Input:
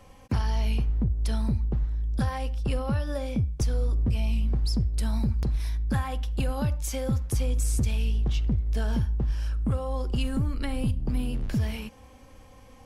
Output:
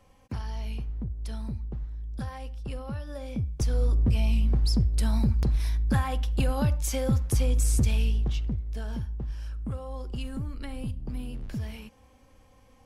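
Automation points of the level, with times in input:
0:03.10 −8 dB
0:03.85 +2 dB
0:07.99 +2 dB
0:08.71 −7 dB

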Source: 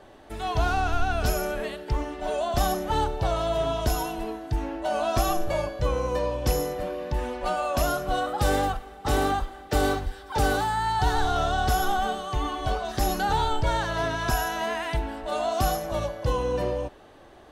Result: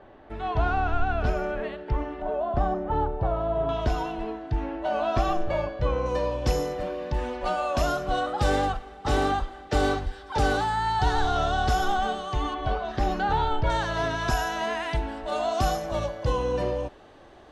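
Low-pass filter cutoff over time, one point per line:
2,300 Hz
from 0:02.22 1,200 Hz
from 0:03.69 3,200 Hz
from 0:06.06 6,400 Hz
from 0:12.54 3,000 Hz
from 0:13.70 7,400 Hz

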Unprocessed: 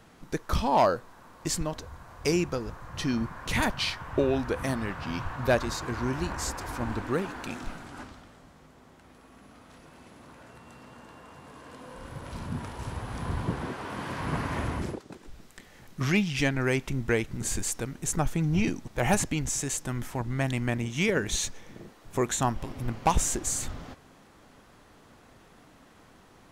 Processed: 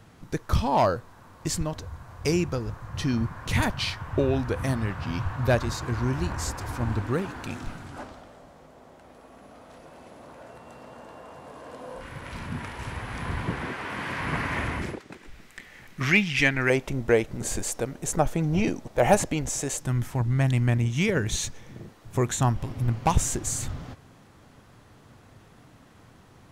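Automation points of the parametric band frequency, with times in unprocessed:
parametric band +10 dB 1.1 octaves
100 Hz
from 0:07.96 610 Hz
from 0:12.01 2,100 Hz
from 0:16.70 580 Hz
from 0:19.80 110 Hz

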